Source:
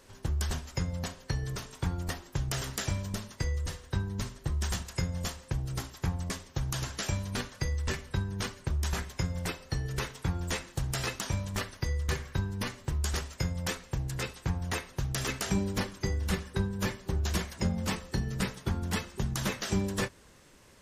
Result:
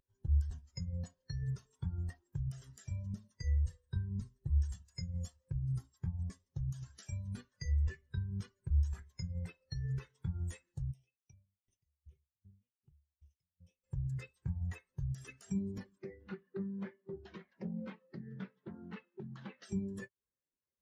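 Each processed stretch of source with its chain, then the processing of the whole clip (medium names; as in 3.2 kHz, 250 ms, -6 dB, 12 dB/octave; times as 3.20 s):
10.91–13.84 s: comb filter that takes the minimum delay 0.33 ms + compression 16:1, threshold -38 dBFS + sawtooth tremolo in dB decaying 2.6 Hz, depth 24 dB
15.98–19.63 s: band-pass 180–3900 Hz + loudspeaker Doppler distortion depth 0.57 ms
whole clip: tilt EQ +1.5 dB/octave; compression 6:1, threshold -36 dBFS; spectral contrast expander 2.5:1; trim -5 dB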